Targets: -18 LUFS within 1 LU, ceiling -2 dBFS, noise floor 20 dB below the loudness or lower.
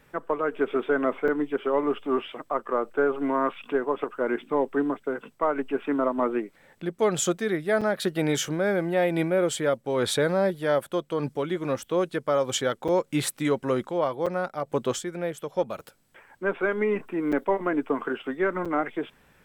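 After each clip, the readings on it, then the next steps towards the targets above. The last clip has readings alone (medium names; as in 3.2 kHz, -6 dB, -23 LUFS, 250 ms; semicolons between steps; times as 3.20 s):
dropouts 6; longest dropout 5.9 ms; loudness -27.0 LUFS; peak level -12.5 dBFS; loudness target -18.0 LUFS
-> interpolate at 1.28/7.81/12.88/14.26/17.32/18.65 s, 5.9 ms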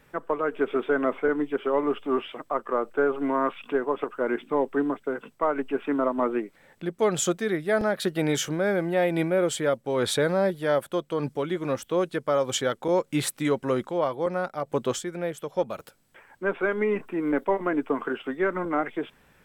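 dropouts 0; loudness -27.0 LUFS; peak level -12.5 dBFS; loudness target -18.0 LUFS
-> trim +9 dB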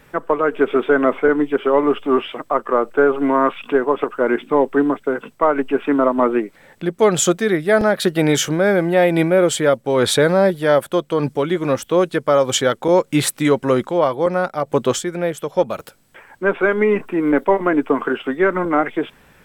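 loudness -18.0 LUFS; peak level -3.5 dBFS; noise floor -52 dBFS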